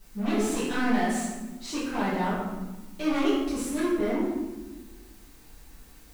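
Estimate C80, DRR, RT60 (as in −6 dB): 3.0 dB, −11.0 dB, 1.2 s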